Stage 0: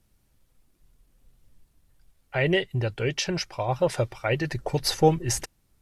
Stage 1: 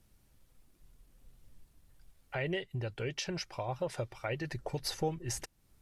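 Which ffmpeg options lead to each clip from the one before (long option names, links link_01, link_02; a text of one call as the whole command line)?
ffmpeg -i in.wav -af "acompressor=threshold=-42dB:ratio=2" out.wav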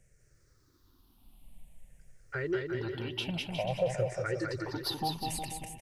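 ffmpeg -i in.wav -af "afftfilt=real='re*pow(10,19/40*sin(2*PI*(0.52*log(max(b,1)*sr/1024/100)/log(2)-(-0.52)*(pts-256)/sr)))':imag='im*pow(10,19/40*sin(2*PI*(0.52*log(max(b,1)*sr/1024/100)/log(2)-(-0.52)*(pts-256)/sr)))':win_size=1024:overlap=0.75,aecho=1:1:200|360|488|590.4|672.3:0.631|0.398|0.251|0.158|0.1,volume=-3dB" out.wav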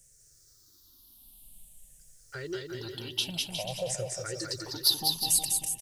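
ffmpeg -i in.wav -af "aexciter=amount=5.9:drive=7.2:freq=3300,volume=-4.5dB" out.wav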